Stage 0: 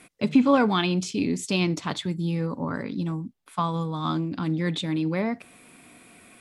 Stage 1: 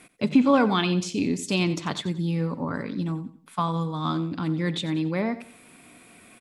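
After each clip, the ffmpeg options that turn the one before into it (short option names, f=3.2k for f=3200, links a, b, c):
-af "aecho=1:1:90|180|270:0.178|0.0605|0.0206"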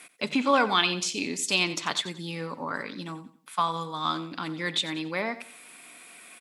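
-af "highpass=f=1.3k:p=1,volume=5.5dB"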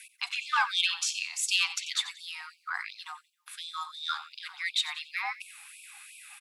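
-af "asoftclip=type=tanh:threshold=-12.5dB,afreqshift=110,afftfilt=real='re*gte(b*sr/1024,720*pow(2300/720,0.5+0.5*sin(2*PI*2.8*pts/sr)))':imag='im*gte(b*sr/1024,720*pow(2300/720,0.5+0.5*sin(2*PI*2.8*pts/sr)))':win_size=1024:overlap=0.75"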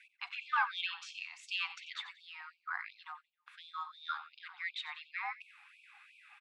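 -af "highpass=630,lowpass=2.1k,volume=-3.5dB"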